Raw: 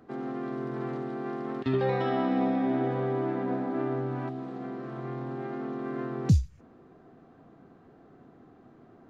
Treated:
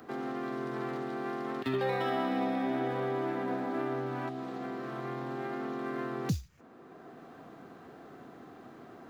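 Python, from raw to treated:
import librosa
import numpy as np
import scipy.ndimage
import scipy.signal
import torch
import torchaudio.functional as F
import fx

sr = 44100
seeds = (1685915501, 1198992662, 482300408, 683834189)

y = scipy.signal.medfilt(x, 5)
y = fx.tilt_eq(y, sr, slope=2.5)
y = fx.band_squash(y, sr, depth_pct=40)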